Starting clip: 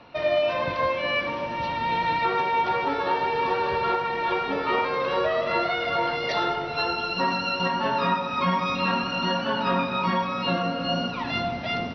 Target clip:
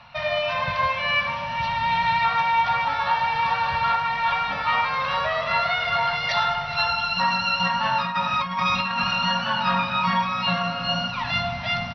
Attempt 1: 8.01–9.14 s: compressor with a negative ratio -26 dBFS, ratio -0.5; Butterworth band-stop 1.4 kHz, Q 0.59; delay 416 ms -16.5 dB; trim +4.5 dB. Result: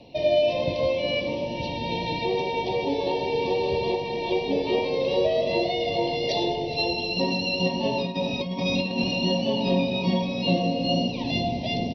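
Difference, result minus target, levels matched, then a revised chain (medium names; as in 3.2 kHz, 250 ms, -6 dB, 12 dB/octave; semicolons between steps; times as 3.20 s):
500 Hz band +11.5 dB
8.01–9.14 s: compressor with a negative ratio -26 dBFS, ratio -0.5; Butterworth band-stop 360 Hz, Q 0.59; delay 416 ms -16.5 dB; trim +4.5 dB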